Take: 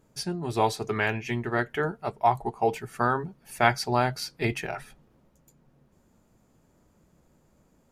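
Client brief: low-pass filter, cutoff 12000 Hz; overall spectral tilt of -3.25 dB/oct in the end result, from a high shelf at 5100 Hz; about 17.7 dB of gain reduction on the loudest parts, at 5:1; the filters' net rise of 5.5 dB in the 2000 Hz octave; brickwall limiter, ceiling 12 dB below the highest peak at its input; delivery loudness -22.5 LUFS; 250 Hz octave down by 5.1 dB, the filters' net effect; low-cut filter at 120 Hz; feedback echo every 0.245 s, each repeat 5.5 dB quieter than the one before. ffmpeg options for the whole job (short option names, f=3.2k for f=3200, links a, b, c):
-af "highpass=120,lowpass=12k,equalizer=f=250:t=o:g=-7,equalizer=f=2k:t=o:g=6.5,highshelf=f=5.1k:g=5,acompressor=threshold=-34dB:ratio=5,alimiter=level_in=3.5dB:limit=-24dB:level=0:latency=1,volume=-3.5dB,aecho=1:1:245|490|735|980|1225|1470|1715:0.531|0.281|0.149|0.079|0.0419|0.0222|0.0118,volume=16.5dB"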